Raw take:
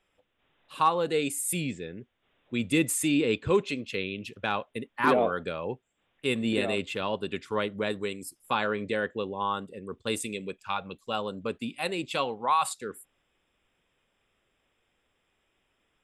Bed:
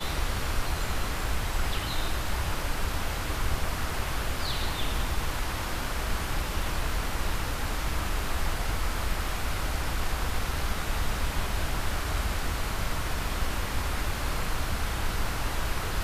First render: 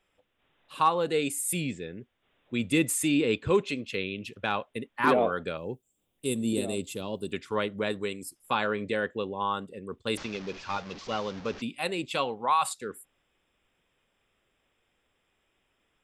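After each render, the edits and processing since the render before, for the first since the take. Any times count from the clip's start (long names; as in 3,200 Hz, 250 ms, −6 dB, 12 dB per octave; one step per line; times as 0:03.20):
0:05.57–0:07.33: drawn EQ curve 340 Hz 0 dB, 1,800 Hz −16 dB, 11,000 Hz +14 dB
0:10.17–0:11.62: linear delta modulator 32 kbit/s, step −37.5 dBFS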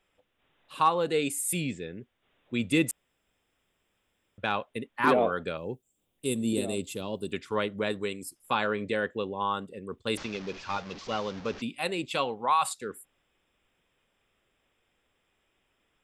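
0:02.91–0:04.38: fill with room tone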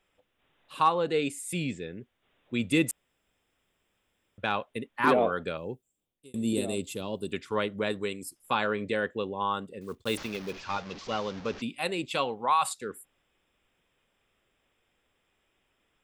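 0:00.92–0:01.61: high-frequency loss of the air 60 metres
0:05.60–0:06.34: fade out
0:09.81–0:10.61: one scale factor per block 5 bits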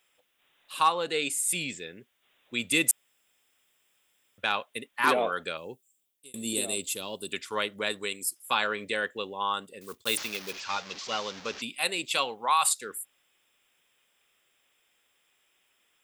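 spectral tilt +3.5 dB per octave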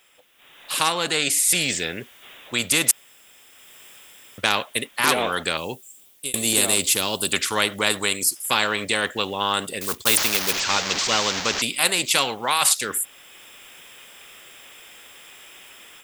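automatic gain control gain up to 13 dB
every bin compressed towards the loudest bin 2 to 1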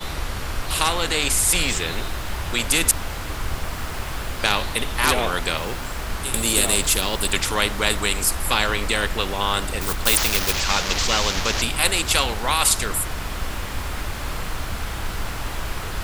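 mix in bed +1.5 dB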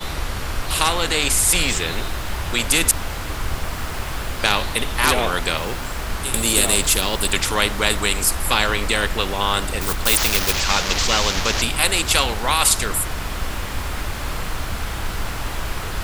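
level +2 dB
brickwall limiter −2 dBFS, peak gain reduction 2.5 dB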